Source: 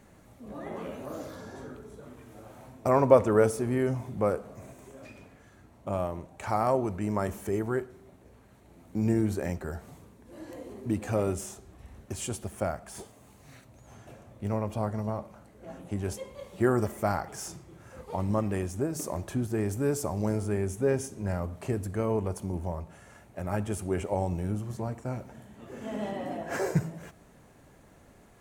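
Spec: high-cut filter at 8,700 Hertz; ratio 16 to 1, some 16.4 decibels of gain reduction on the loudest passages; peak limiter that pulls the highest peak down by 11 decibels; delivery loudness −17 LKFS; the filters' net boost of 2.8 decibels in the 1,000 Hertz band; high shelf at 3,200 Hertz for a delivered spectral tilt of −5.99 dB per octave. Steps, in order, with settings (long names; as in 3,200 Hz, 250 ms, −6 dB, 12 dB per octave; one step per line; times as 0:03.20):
low-pass filter 8,700 Hz
parametric band 1,000 Hz +4.5 dB
high-shelf EQ 3,200 Hz −8.5 dB
downward compressor 16 to 1, threshold −28 dBFS
level +22 dB
brickwall limiter −4.5 dBFS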